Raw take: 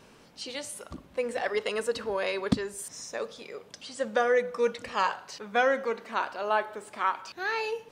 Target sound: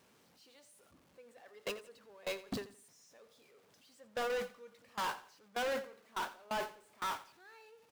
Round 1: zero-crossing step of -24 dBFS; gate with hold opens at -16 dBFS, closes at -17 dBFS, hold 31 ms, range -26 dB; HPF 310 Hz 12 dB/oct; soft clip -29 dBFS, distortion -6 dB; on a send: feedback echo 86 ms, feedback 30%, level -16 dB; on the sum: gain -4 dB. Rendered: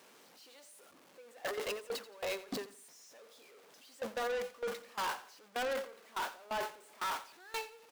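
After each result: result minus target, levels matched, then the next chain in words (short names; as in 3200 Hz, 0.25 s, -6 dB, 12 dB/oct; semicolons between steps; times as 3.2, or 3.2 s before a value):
125 Hz band -4.5 dB; zero-crossing step: distortion +6 dB
zero-crossing step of -24 dBFS; gate with hold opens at -16 dBFS, closes at -17 dBFS, hold 31 ms, range -26 dB; HPF 82 Hz 12 dB/oct; soft clip -29 dBFS, distortion -6 dB; on a send: feedback echo 86 ms, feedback 30%, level -16 dB; on the sum: gain -4 dB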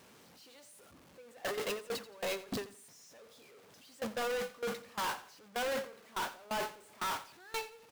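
zero-crossing step: distortion +6 dB
zero-crossing step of -32.5 dBFS; gate with hold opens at -16 dBFS, closes at -17 dBFS, hold 31 ms, range -26 dB; HPF 82 Hz 12 dB/oct; soft clip -29 dBFS, distortion -6 dB; on a send: feedback echo 86 ms, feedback 30%, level -16 dB; on the sum: gain -4 dB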